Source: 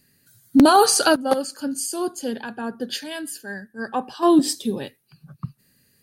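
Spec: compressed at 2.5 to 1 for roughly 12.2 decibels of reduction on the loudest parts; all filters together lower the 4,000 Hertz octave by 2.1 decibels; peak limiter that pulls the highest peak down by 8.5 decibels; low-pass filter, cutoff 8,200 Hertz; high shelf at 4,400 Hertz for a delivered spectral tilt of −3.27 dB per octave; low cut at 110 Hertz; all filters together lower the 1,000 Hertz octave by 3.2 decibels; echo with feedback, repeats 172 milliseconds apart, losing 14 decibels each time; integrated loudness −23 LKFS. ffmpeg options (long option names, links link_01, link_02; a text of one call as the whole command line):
ffmpeg -i in.wav -af "highpass=110,lowpass=8200,equalizer=frequency=1000:width_type=o:gain=-4.5,equalizer=frequency=4000:width_type=o:gain=-5.5,highshelf=frequency=4400:gain=5.5,acompressor=threshold=-29dB:ratio=2.5,alimiter=limit=-23.5dB:level=0:latency=1,aecho=1:1:172|344:0.2|0.0399,volume=10.5dB" out.wav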